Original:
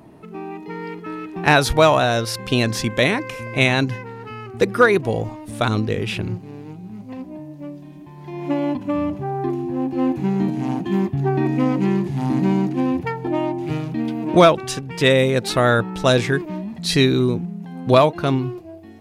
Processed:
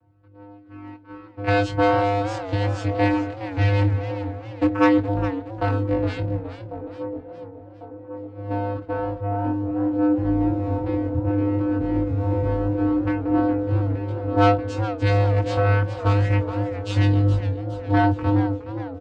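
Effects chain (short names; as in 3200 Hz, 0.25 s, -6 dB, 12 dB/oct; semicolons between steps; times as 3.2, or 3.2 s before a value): gate -28 dBFS, range -15 dB; bell 1200 Hz +7 dB 2.5 oct; 10.94–11.94 level quantiser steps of 10 dB; vocoder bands 8, square 101 Hz; chorus voices 2, 0.13 Hz, delay 21 ms, depth 3.1 ms; soft clip -12 dBFS, distortion -12 dB; doubler 23 ms -11.5 dB; band-limited delay 1.097 s, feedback 60%, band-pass 410 Hz, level -10.5 dB; warbling echo 0.416 s, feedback 49%, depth 129 cents, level -12 dB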